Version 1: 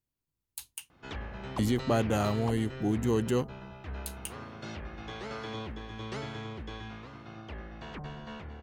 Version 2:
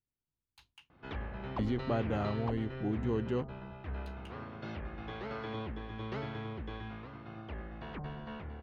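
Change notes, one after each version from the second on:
speech −5.0 dB
master: add high-frequency loss of the air 260 metres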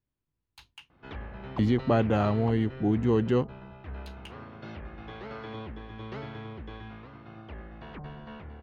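speech +9.0 dB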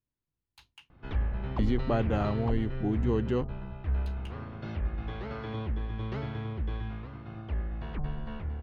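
speech −4.5 dB
background: remove high-pass filter 240 Hz 6 dB per octave

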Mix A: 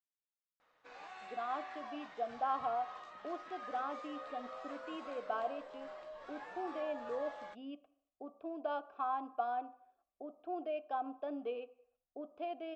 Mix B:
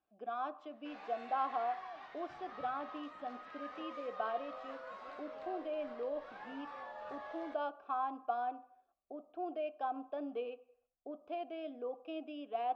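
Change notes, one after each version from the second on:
speech: entry −1.10 s
background: remove low-pass with resonance 7,700 Hz, resonance Q 3.8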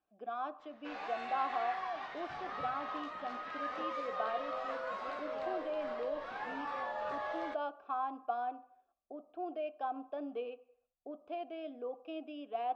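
background +8.5 dB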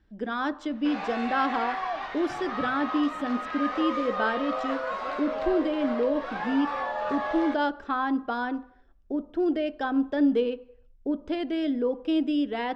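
speech: remove formant filter a
background +8.5 dB

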